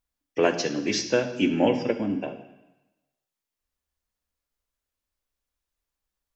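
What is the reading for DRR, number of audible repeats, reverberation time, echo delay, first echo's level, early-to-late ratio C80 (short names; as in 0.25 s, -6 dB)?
6.0 dB, none, 1.0 s, none, none, 12.5 dB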